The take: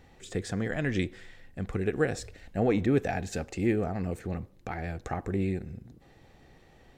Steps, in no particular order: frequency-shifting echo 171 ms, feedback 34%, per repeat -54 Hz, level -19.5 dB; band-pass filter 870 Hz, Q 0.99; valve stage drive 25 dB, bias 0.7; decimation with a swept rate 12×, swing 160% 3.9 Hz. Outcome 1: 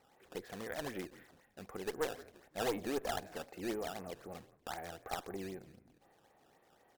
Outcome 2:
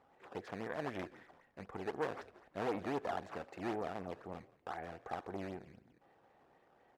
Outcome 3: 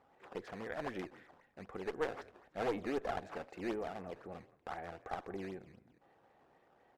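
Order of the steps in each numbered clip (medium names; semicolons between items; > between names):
band-pass filter > frequency-shifting echo > decimation with a swept rate > valve stage; decimation with a swept rate > frequency-shifting echo > valve stage > band-pass filter; frequency-shifting echo > decimation with a swept rate > band-pass filter > valve stage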